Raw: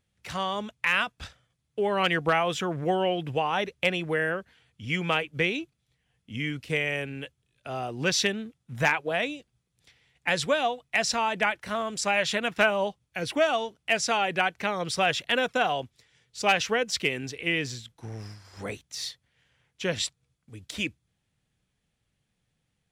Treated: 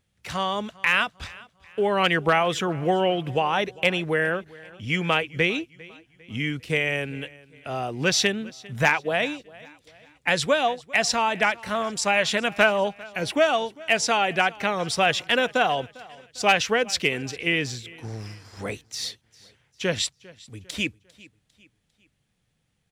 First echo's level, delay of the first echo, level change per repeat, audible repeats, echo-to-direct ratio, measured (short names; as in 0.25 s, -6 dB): -22.0 dB, 0.4 s, -7.5 dB, 2, -21.0 dB